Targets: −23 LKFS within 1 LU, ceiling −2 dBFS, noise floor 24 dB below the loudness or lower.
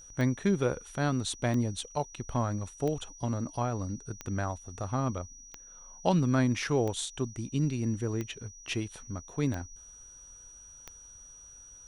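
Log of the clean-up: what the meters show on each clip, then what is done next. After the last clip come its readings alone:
number of clicks 9; interfering tone 5,800 Hz; level of the tone −49 dBFS; integrated loudness −32.0 LKFS; sample peak −12.5 dBFS; target loudness −23.0 LKFS
→ click removal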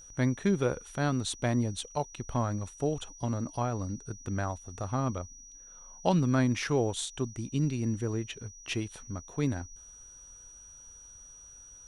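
number of clicks 0; interfering tone 5,800 Hz; level of the tone −49 dBFS
→ notch filter 5,800 Hz, Q 30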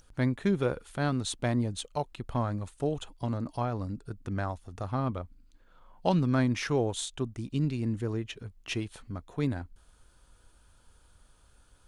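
interfering tone none found; integrated loudness −32.0 LKFS; sample peak −12.5 dBFS; target loudness −23.0 LKFS
→ level +9 dB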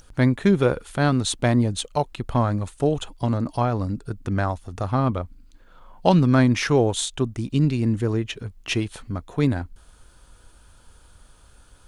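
integrated loudness −23.0 LKFS; sample peak −3.5 dBFS; background noise floor −53 dBFS

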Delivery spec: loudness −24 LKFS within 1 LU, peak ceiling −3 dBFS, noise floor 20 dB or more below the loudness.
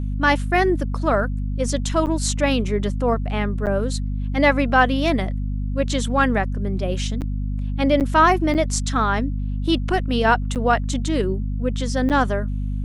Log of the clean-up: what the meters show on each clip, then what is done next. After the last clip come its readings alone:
number of dropouts 7; longest dropout 8.3 ms; mains hum 50 Hz; hum harmonics up to 250 Hz; level of the hum −22 dBFS; integrated loudness −21.0 LKFS; sample peak −3.0 dBFS; target loudness −24.0 LKFS
→ repair the gap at 0:02.06/0:03.66/0:07.21/0:08.00/0:08.54/0:10.55/0:12.09, 8.3 ms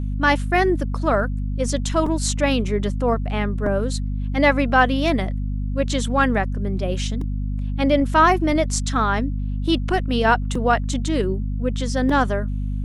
number of dropouts 0; mains hum 50 Hz; hum harmonics up to 250 Hz; level of the hum −22 dBFS
→ hum removal 50 Hz, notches 5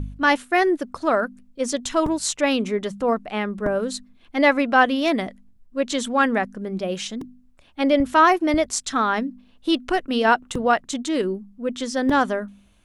mains hum none found; integrated loudness −22.0 LKFS; sample peak −4.0 dBFS; target loudness −24.0 LKFS
→ level −2 dB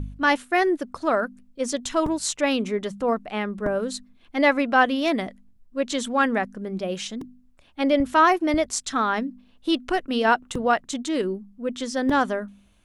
integrated loudness −24.0 LKFS; sample peak −6.0 dBFS; background noise floor −57 dBFS

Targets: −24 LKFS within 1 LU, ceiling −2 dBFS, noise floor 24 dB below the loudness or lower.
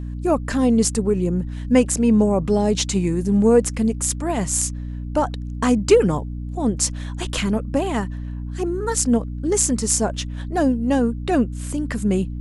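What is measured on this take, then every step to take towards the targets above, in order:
mains hum 60 Hz; hum harmonics up to 300 Hz; level of the hum −26 dBFS; integrated loudness −20.5 LKFS; sample peak −2.0 dBFS; target loudness −24.0 LKFS
→ hum removal 60 Hz, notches 5
level −3.5 dB

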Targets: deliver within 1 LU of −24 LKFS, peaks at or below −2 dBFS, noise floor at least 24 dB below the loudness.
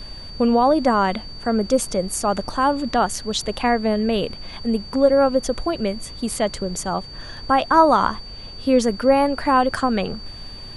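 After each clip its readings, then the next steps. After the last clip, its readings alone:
interfering tone 4,600 Hz; level of the tone −37 dBFS; background noise floor −37 dBFS; target noise floor −45 dBFS; integrated loudness −20.5 LKFS; sample peak −3.0 dBFS; target loudness −24.0 LKFS
→ notch filter 4,600 Hz, Q 30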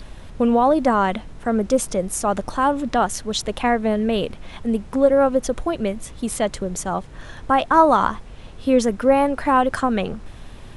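interfering tone none found; background noise floor −39 dBFS; target noise floor −45 dBFS
→ noise reduction from a noise print 6 dB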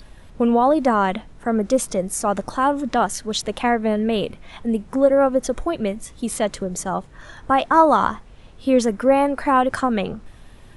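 background noise floor −44 dBFS; target noise floor −45 dBFS
→ noise reduction from a noise print 6 dB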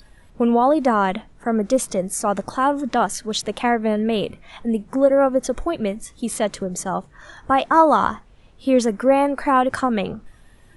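background noise floor −50 dBFS; integrated loudness −20.5 LKFS; sample peak −3.0 dBFS; target loudness −24.0 LKFS
→ level −3.5 dB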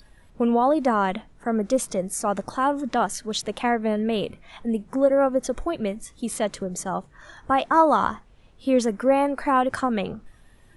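integrated loudness −24.0 LKFS; sample peak −6.5 dBFS; background noise floor −53 dBFS

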